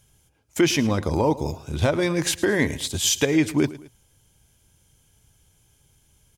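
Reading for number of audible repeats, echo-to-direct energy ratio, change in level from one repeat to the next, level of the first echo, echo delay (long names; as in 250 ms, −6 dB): 2, −17.0 dB, −7.5 dB, −17.5 dB, 109 ms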